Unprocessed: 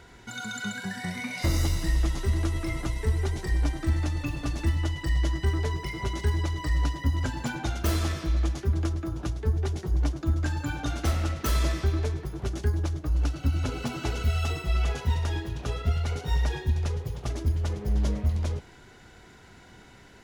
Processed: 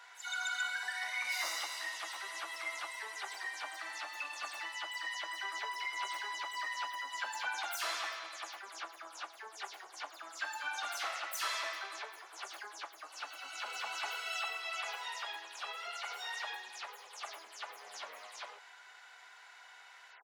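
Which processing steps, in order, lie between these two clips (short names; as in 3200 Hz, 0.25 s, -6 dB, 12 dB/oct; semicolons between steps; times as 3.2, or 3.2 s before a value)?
spectral delay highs early, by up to 0.125 s; HPF 840 Hz 24 dB/oct; high shelf 5900 Hz -8 dB; gain +1 dB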